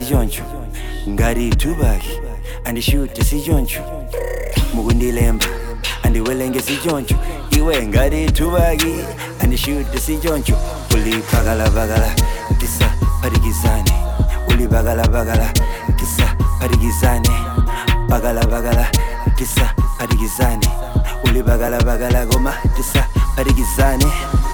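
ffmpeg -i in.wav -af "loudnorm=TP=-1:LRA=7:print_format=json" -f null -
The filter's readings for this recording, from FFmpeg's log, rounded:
"input_i" : "-17.4",
"input_tp" : "-3.5",
"input_lra" : "2.6",
"input_thresh" : "-27.5",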